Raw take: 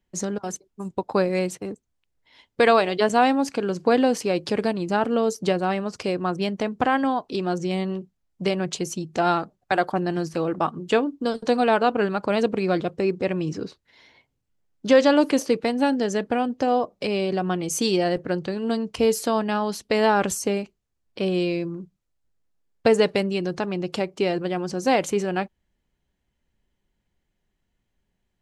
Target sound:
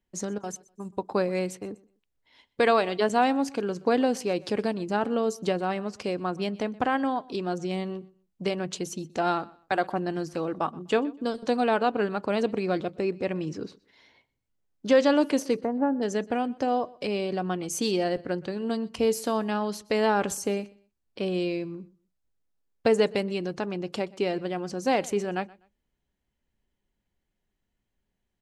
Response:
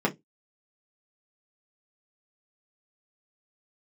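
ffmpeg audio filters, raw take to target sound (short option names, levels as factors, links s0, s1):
-filter_complex "[0:a]asplit=3[s0][s1][s2];[s0]afade=t=out:st=15.56:d=0.02[s3];[s1]lowpass=f=1400:w=0.5412,lowpass=f=1400:w=1.3066,afade=t=in:st=15.56:d=0.02,afade=t=out:st=16.01:d=0.02[s4];[s2]afade=t=in:st=16.01:d=0.02[s5];[s3][s4][s5]amix=inputs=3:normalize=0,aecho=1:1:124|248:0.0708|0.0177,asplit=2[s6][s7];[1:a]atrim=start_sample=2205[s8];[s7][s8]afir=irnorm=-1:irlink=0,volume=0.0251[s9];[s6][s9]amix=inputs=2:normalize=0,volume=0.562"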